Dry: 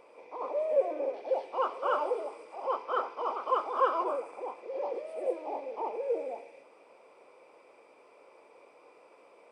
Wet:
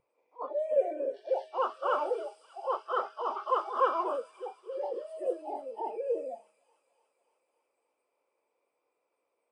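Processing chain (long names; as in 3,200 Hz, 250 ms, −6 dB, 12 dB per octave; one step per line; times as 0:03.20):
noise reduction from a noise print of the clip's start 23 dB
hum removal 210.8 Hz, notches 3
on a send: delay with a high-pass on its return 292 ms, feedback 68%, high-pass 3,300 Hz, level −9 dB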